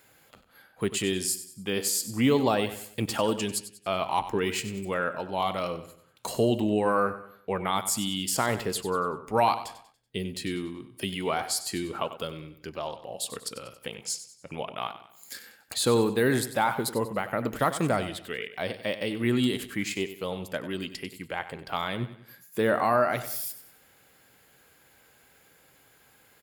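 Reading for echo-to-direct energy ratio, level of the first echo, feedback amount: -12.0 dB, -13.0 dB, 40%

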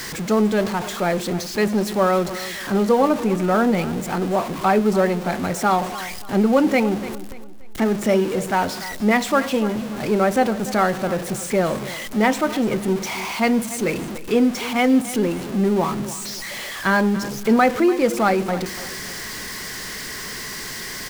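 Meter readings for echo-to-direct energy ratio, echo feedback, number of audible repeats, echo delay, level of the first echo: -15.0 dB, 35%, 3, 290 ms, -15.5 dB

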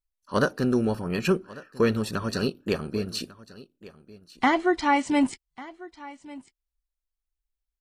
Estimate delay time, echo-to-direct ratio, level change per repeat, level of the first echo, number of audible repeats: 1146 ms, -19.5 dB, no regular repeats, -19.5 dB, 1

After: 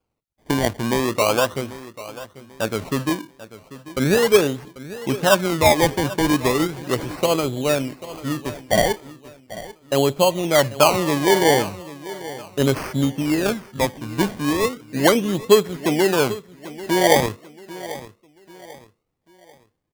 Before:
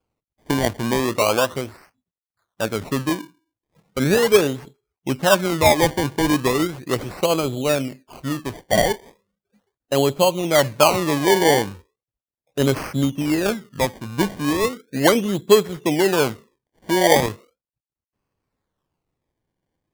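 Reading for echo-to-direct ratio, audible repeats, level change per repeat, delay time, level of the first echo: -16.0 dB, 3, -9.0 dB, 791 ms, -16.5 dB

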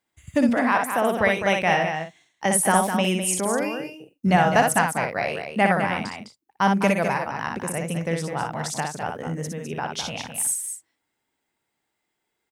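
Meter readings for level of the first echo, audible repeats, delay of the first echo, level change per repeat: -4.5 dB, 3, 60 ms, no regular repeats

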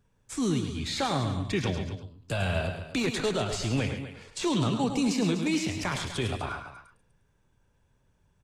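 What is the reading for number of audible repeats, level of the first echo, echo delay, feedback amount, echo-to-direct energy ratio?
4, -8.5 dB, 105 ms, no regular repeats, -6.0 dB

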